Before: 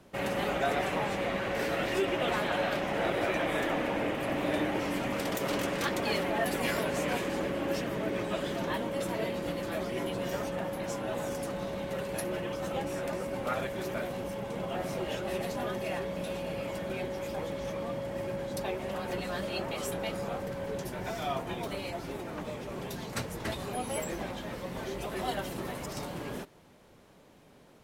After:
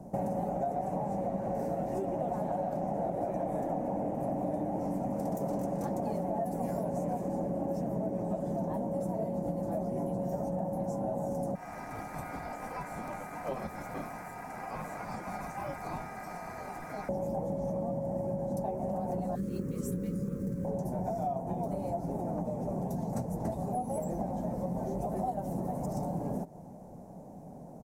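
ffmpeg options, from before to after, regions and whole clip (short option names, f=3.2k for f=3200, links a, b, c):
-filter_complex "[0:a]asettb=1/sr,asplit=3[a][b][c];[a]atrim=end=11.554[d];[b]atrim=start=11.55:end=17.09,asetpts=PTS-STARTPTS,afade=t=in:d=0.004:c=qsin,afade=t=out:st=5.536:d=0.004:c=qsin,acrossover=split=3300[e][f];[f]acompressor=threshold=-58dB:ratio=4:attack=1:release=60[g];[e][g]amix=inputs=2:normalize=0,bass=f=250:g=3,treble=f=4k:g=7,aeval=exprs='val(0)*sin(2*PI*1800*n/s)':c=same[h];[c]atrim=start=17.086[i];[d][h]acrossfade=d=0.004:c1=hsin:c2=qsin[j];[j][i]acrossfade=d=0.004:c1=qsin:c2=hsin,asettb=1/sr,asplit=3[k][l][m];[k]atrim=end=19.354[n];[l]atrim=start=19.35:end=20.65,asetpts=PTS-STARTPTS,afade=t=in:d=0.004:c=qsin,afade=t=out:st=1.296:d=0.004:c=qsin,asuperstop=centerf=760:order=8:qfactor=1.1,acrusher=bits=5:mode=log:mix=0:aa=0.000001[o];[m]atrim=start=20.646[p];[n][o]acrossfade=d=0.004:c1=hsin:c2=qsin[q];[q][p]acrossfade=d=0.004:c1=qsin:c2=hsin,firequalizer=gain_entry='entry(100,0);entry(170,8);entry(380,-4);entry(740,7);entry(1200,-16);entry(3200,-30);entry(6000,-10);entry(8600,-8)':delay=0.05:min_phase=1,acompressor=threshold=-39dB:ratio=6,volume=8dB"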